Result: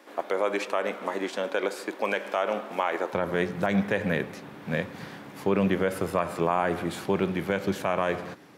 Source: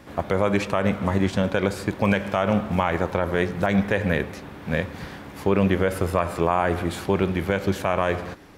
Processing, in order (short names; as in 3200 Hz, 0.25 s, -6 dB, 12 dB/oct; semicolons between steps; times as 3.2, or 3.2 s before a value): HPF 310 Hz 24 dB/oct, from 3.13 s 120 Hz; gain -3.5 dB